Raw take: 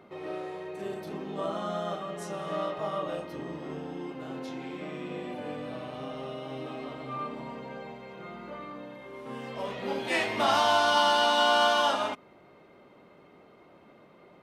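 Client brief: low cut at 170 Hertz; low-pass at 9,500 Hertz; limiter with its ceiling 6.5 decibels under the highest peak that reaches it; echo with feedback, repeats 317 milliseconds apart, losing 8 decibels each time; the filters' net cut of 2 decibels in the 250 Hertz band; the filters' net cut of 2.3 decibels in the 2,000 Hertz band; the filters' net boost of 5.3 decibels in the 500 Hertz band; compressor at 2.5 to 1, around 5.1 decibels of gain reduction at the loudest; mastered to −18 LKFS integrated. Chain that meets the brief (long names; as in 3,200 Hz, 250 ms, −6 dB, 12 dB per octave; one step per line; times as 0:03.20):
high-pass filter 170 Hz
low-pass filter 9,500 Hz
parametric band 250 Hz −5.5 dB
parametric band 500 Hz +8.5 dB
parametric band 2,000 Hz −4.5 dB
downward compressor 2.5 to 1, threshold −25 dBFS
brickwall limiter −21.5 dBFS
repeating echo 317 ms, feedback 40%, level −8 dB
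level +14.5 dB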